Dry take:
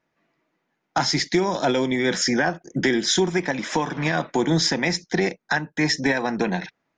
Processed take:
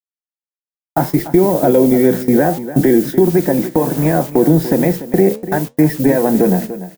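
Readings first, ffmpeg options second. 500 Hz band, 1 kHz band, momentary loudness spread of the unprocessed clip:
+11.0 dB, +4.5 dB, 5 LU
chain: -filter_complex "[0:a]lowpass=1200,lowshelf=frequency=740:width_type=q:width=1.5:gain=7,acrusher=bits=6:mix=0:aa=0.000001,aemphasis=mode=production:type=50fm,agate=range=-29dB:threshold=-25dB:ratio=16:detection=peak,flanger=delay=6.2:depth=9.8:regen=76:speed=0.68:shape=sinusoidal,asplit=2[link_01][link_02];[link_02]aecho=0:1:292:0.188[link_03];[link_01][link_03]amix=inputs=2:normalize=0,alimiter=level_in=10dB:limit=-1dB:release=50:level=0:latency=1,volume=-1dB"

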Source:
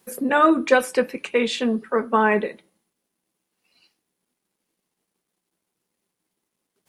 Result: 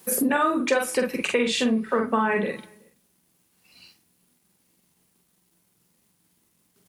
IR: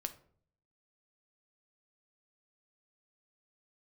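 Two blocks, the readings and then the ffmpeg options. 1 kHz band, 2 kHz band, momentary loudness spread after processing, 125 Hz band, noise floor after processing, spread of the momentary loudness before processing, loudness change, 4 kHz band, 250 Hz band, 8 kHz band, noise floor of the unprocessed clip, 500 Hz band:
−4.5 dB, −3.0 dB, 5 LU, can't be measured, −68 dBFS, 7 LU, −3.0 dB, +1.0 dB, −1.5 dB, +7.0 dB, −81 dBFS, −3.5 dB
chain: -filter_complex "[0:a]asubboost=boost=3.5:cutoff=200,asplit=2[link_01][link_02];[link_02]adelay=45,volume=-3dB[link_03];[link_01][link_03]amix=inputs=2:normalize=0,asplit=2[link_04][link_05];[link_05]aderivative[link_06];[1:a]atrim=start_sample=2205[link_07];[link_06][link_07]afir=irnorm=-1:irlink=0,volume=-0.5dB[link_08];[link_04][link_08]amix=inputs=2:normalize=0,acompressor=threshold=-27dB:ratio=5,highpass=50,asplit=2[link_09][link_10];[link_10]adelay=373.2,volume=-29dB,highshelf=frequency=4000:gain=-8.4[link_11];[link_09][link_11]amix=inputs=2:normalize=0,volume=6.5dB"

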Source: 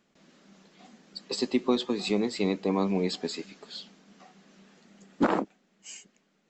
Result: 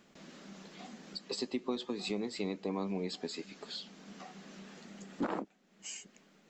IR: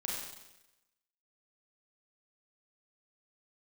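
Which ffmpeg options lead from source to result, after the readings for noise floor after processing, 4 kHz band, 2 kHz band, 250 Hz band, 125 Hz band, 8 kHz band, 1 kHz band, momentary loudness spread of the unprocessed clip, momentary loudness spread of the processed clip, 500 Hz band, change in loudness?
−66 dBFS, −6.0 dB, −8.0 dB, −9.5 dB, −9.0 dB, −3.5 dB, −9.5 dB, 18 LU, 14 LU, −9.5 dB, −11.0 dB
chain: -af "acompressor=threshold=-53dB:ratio=2,volume=6.5dB"

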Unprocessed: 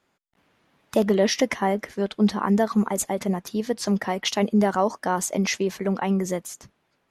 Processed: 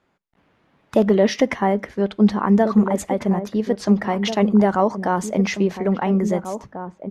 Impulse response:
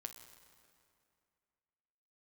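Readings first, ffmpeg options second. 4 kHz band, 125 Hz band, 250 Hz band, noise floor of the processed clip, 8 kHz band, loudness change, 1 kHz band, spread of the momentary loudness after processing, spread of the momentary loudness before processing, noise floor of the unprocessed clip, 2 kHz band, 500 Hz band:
−2.0 dB, +5.5 dB, +5.5 dB, −64 dBFS, −6.0 dB, +4.5 dB, +3.5 dB, 7 LU, 7 LU, −71 dBFS, +1.5 dB, +4.5 dB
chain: -filter_complex "[0:a]lowpass=frequency=2200:poles=1,asplit=2[link_01][link_02];[link_02]adelay=1691,volume=-9dB,highshelf=frequency=4000:gain=-38[link_03];[link_01][link_03]amix=inputs=2:normalize=0,asplit=2[link_04][link_05];[1:a]atrim=start_sample=2205,afade=type=out:start_time=0.16:duration=0.01,atrim=end_sample=7497,lowshelf=frequency=240:gain=11[link_06];[link_05][link_06]afir=irnorm=-1:irlink=0,volume=-10dB[link_07];[link_04][link_07]amix=inputs=2:normalize=0,volume=2.5dB"

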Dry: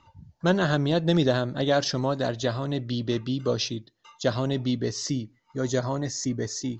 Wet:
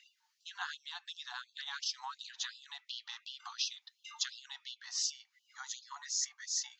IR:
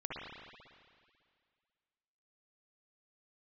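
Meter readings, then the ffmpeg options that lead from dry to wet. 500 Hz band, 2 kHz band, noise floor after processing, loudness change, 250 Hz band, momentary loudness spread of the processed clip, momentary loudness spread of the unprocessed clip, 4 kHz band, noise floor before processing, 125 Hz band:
below −40 dB, −11.0 dB, −79 dBFS, −13.0 dB, below −40 dB, 14 LU, 7 LU, −5.5 dB, −65 dBFS, below −40 dB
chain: -af "acompressor=threshold=-34dB:ratio=12,afftfilt=real='re*gte(b*sr/1024,720*pow(2700/720,0.5+0.5*sin(2*PI*2.8*pts/sr)))':imag='im*gte(b*sr/1024,720*pow(2700/720,0.5+0.5*sin(2*PI*2.8*pts/sr)))':win_size=1024:overlap=0.75,volume=5dB"

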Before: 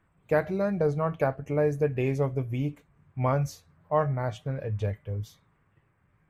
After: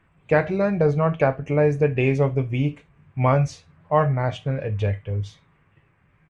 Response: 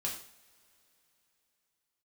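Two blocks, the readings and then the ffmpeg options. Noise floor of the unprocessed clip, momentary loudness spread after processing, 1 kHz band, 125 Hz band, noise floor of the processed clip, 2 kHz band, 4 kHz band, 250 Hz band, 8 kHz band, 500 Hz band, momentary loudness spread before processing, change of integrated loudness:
−69 dBFS, 8 LU, +6.5 dB, +7.0 dB, −62 dBFS, +8.5 dB, +8.5 dB, +6.5 dB, can't be measured, +6.0 dB, 9 LU, +6.5 dB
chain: -filter_complex "[0:a]firequalizer=gain_entry='entry(1400,0);entry(2600,6);entry(4200,-1);entry(8100,-6)':delay=0.05:min_phase=1,asplit=2[link_01][link_02];[1:a]atrim=start_sample=2205,atrim=end_sample=3528[link_03];[link_02][link_03]afir=irnorm=-1:irlink=0,volume=-11dB[link_04];[link_01][link_04]amix=inputs=2:normalize=0,aresample=22050,aresample=44100,volume=4.5dB"

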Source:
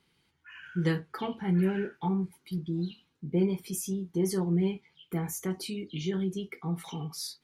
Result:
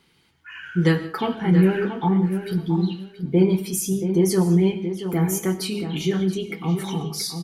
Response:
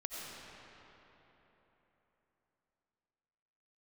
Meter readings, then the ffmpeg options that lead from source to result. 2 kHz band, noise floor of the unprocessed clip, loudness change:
+10.0 dB, −73 dBFS, +9.5 dB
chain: -filter_complex "[0:a]bandreject=frequency=50:width_type=h:width=6,bandreject=frequency=100:width_type=h:width=6,bandreject=frequency=150:width_type=h:width=6,bandreject=frequency=200:width_type=h:width=6,asplit=2[link_01][link_02];[link_02]adelay=678,lowpass=frequency=2500:poles=1,volume=-9dB,asplit=2[link_03][link_04];[link_04]adelay=678,lowpass=frequency=2500:poles=1,volume=0.19,asplit=2[link_05][link_06];[link_06]adelay=678,lowpass=frequency=2500:poles=1,volume=0.19[link_07];[link_01][link_03][link_05][link_07]amix=inputs=4:normalize=0,asplit=2[link_08][link_09];[1:a]atrim=start_sample=2205,afade=type=out:start_time=0.23:duration=0.01,atrim=end_sample=10584[link_10];[link_09][link_10]afir=irnorm=-1:irlink=0,volume=-5.5dB[link_11];[link_08][link_11]amix=inputs=2:normalize=0,volume=7dB"

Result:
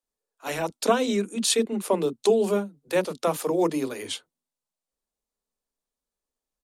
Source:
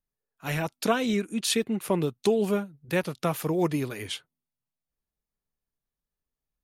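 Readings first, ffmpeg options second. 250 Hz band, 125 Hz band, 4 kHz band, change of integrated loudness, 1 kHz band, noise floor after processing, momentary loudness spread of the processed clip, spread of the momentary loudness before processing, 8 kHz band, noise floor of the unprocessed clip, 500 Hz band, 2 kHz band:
0.0 dB, −6.0 dB, +2.0 dB, +2.5 dB, +3.0 dB, below −85 dBFS, 11 LU, 7 LU, +4.5 dB, below −85 dBFS, +4.0 dB, −1.0 dB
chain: -filter_complex "[0:a]equalizer=frequency=125:width_type=o:width=1:gain=-10,equalizer=frequency=250:width_type=o:width=1:gain=9,equalizer=frequency=500:width_type=o:width=1:gain=9,equalizer=frequency=1000:width_type=o:width=1:gain=6,equalizer=frequency=4000:width_type=o:width=1:gain=5,equalizer=frequency=8000:width_type=o:width=1:gain=10,acrossover=split=300[link_01][link_02];[link_01]adelay=30[link_03];[link_03][link_02]amix=inputs=2:normalize=0,volume=-4.5dB"

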